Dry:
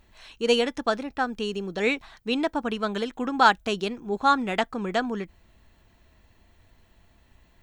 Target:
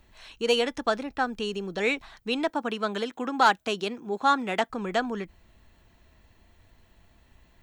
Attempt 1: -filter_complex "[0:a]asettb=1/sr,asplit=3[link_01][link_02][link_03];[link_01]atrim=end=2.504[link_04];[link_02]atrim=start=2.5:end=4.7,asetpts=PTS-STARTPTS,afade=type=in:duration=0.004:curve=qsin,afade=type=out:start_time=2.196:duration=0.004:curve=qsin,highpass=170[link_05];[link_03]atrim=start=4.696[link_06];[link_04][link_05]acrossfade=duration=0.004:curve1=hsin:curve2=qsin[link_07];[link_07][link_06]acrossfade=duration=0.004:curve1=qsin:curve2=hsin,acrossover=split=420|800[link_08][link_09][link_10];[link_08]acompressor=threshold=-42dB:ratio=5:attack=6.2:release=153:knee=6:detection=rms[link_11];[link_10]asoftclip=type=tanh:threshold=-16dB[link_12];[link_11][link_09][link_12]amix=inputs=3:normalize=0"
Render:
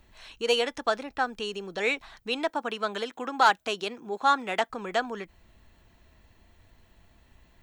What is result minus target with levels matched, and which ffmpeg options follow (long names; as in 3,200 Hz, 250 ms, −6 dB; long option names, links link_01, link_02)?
downward compressor: peak gain reduction +9 dB
-filter_complex "[0:a]asettb=1/sr,asplit=3[link_01][link_02][link_03];[link_01]atrim=end=2.504[link_04];[link_02]atrim=start=2.5:end=4.7,asetpts=PTS-STARTPTS,afade=type=in:duration=0.004:curve=qsin,afade=type=out:start_time=2.196:duration=0.004:curve=qsin,highpass=170[link_05];[link_03]atrim=start=4.696[link_06];[link_04][link_05]acrossfade=duration=0.004:curve1=hsin:curve2=qsin[link_07];[link_07][link_06]acrossfade=duration=0.004:curve1=qsin:curve2=hsin,acrossover=split=420|800[link_08][link_09][link_10];[link_08]acompressor=threshold=-30.5dB:ratio=5:attack=6.2:release=153:knee=6:detection=rms[link_11];[link_10]asoftclip=type=tanh:threshold=-16dB[link_12];[link_11][link_09][link_12]amix=inputs=3:normalize=0"